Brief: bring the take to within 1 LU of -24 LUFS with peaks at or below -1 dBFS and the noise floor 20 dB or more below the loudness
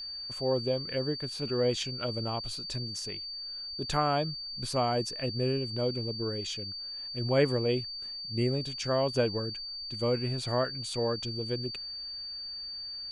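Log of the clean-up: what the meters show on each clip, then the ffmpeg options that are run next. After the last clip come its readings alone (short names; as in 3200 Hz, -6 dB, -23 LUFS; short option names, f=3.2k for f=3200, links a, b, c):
steady tone 4600 Hz; tone level -37 dBFS; loudness -31.5 LUFS; peak -13.5 dBFS; loudness target -24.0 LUFS
-> -af "bandreject=f=4.6k:w=30"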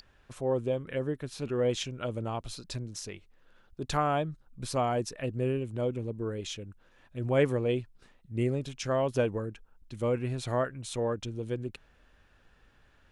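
steady tone none; loudness -32.5 LUFS; peak -14.0 dBFS; loudness target -24.0 LUFS
-> -af "volume=8.5dB"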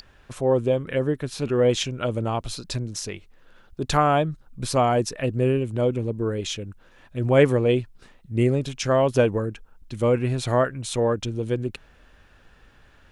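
loudness -24.0 LUFS; peak -5.5 dBFS; noise floor -55 dBFS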